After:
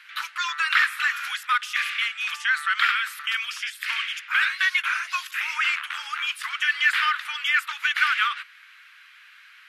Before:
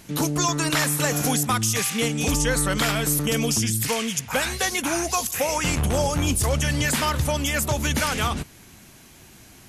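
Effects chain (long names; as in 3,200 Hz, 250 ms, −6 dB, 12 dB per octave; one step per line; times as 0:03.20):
Butterworth high-pass 1,300 Hz 48 dB per octave
in parallel at +2 dB: speech leveller 2 s
on the sum: high-frequency loss of the air 460 metres
level +4 dB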